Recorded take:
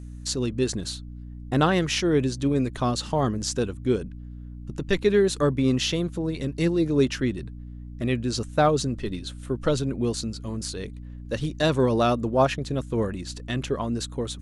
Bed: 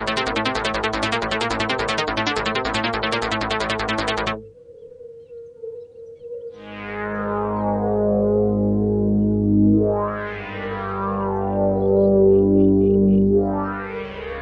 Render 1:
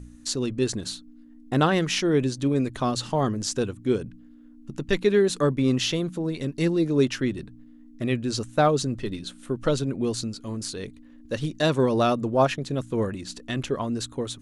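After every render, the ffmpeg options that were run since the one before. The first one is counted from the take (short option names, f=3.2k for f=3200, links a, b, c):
-af "bandreject=f=60:t=h:w=4,bandreject=f=120:t=h:w=4,bandreject=f=180:t=h:w=4"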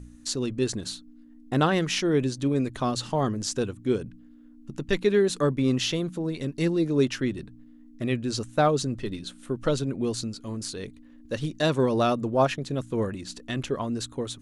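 -af "volume=-1.5dB"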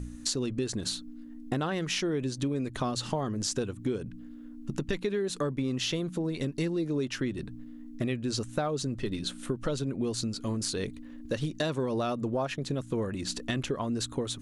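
-filter_complex "[0:a]asplit=2[a][b];[b]alimiter=limit=-17dB:level=0:latency=1,volume=0dB[c];[a][c]amix=inputs=2:normalize=0,acompressor=threshold=-28dB:ratio=6"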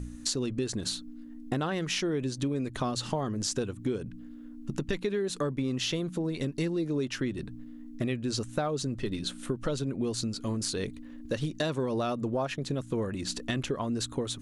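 -af anull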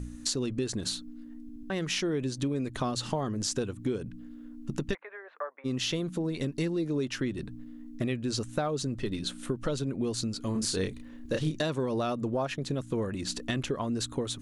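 -filter_complex "[0:a]asplit=3[a][b][c];[a]afade=t=out:st=4.93:d=0.02[d];[b]asuperpass=centerf=1100:order=8:qfactor=0.74,afade=t=in:st=4.93:d=0.02,afade=t=out:st=5.64:d=0.02[e];[c]afade=t=in:st=5.64:d=0.02[f];[d][e][f]amix=inputs=3:normalize=0,asettb=1/sr,asplit=3[g][h][i];[g]atrim=end=10.524[j];[h]atrim=start=10.52:end=11.61,asetpts=PTS-STARTPTS,afade=t=in:d=0.004:c=qsin,afade=t=out:st=1.086:d=0.004:c=qsin,asplit=2[k][l];[l]adelay=32,volume=-3.5dB[m];[k][m]amix=inputs=2:normalize=0,atrim=end_sample=48069[n];[i]atrim=start=11.606[o];[j][n]acrossfade=d=0.004:c1=hsin:c2=qsin[p];[p][o]acrossfade=d=0.004:c1=qsin:c2=hsin,asplit=5[q][r][s][t][u];[q]atrim=end=1.492[v];[r]atrim=start=1.418:end=1.492[w];[s]atrim=start=1.418:end=1.492[x];[t]atrim=start=1.418:end=1.492[y];[u]atrim=start=1.698[z];[v][w]acrossfade=d=0.004:c1=hsin:c2=hsin[aa];[aa][x]acrossfade=d=0.004:c1=hsin:c2=hsin[ab];[ab][y]acrossfade=d=0.004:c1=hsin:c2=hsin[ac];[ac][z]acrossfade=d=0.004:c1=hsin:c2=hsin"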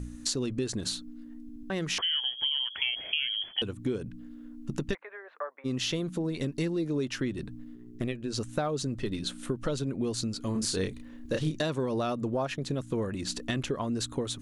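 -filter_complex "[0:a]asettb=1/sr,asplit=3[a][b][c];[a]atrim=end=1.984[d];[b]atrim=start=1.98:end=3.62,asetpts=PTS-STARTPTS,afade=t=in:d=0.004:c=qsin,afade=t=out:st=1.636:d=0.004:c=qsin,lowpass=f=2.9k:t=q:w=0.5098,lowpass=f=2.9k:t=q:w=0.6013,lowpass=f=2.9k:t=q:w=0.9,lowpass=f=2.9k:t=q:w=2.563,afreqshift=-3400[e];[c]atrim=start=3.616[f];[d][e]acrossfade=d=0.004:c1=hsin:c2=qsin[g];[g][f]acrossfade=d=0.004:c1=qsin:c2=hsin,asplit=3[h][i][j];[h]afade=t=out:st=7.74:d=0.02[k];[i]tremolo=f=120:d=0.75,afade=t=in:st=7.74:d=0.02,afade=t=out:st=8.35:d=0.02[l];[j]afade=t=in:st=8.35:d=0.02[m];[k][l][m]amix=inputs=3:normalize=0"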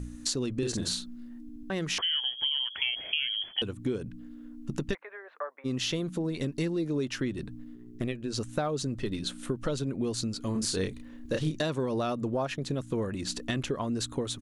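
-filter_complex "[0:a]asplit=3[a][b][c];[a]afade=t=out:st=0.61:d=0.02[d];[b]asplit=2[e][f];[f]adelay=45,volume=-3dB[g];[e][g]amix=inputs=2:normalize=0,afade=t=in:st=0.61:d=0.02,afade=t=out:st=1.39:d=0.02[h];[c]afade=t=in:st=1.39:d=0.02[i];[d][h][i]amix=inputs=3:normalize=0"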